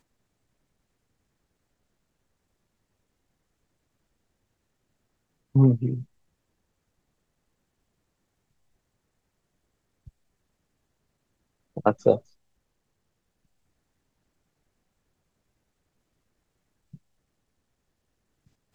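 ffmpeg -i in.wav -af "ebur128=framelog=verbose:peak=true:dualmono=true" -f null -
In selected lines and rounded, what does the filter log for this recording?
Integrated loudness:
  I:         -20.5 LUFS
  Threshold: -33.1 LUFS
Loudness range:
  LRA:         7.0 LU
  Threshold: -49.1 LUFS
  LRA low:   -32.8 LUFS
  LRA high:  -25.8 LUFS
True peak:
  Peak:       -4.4 dBFS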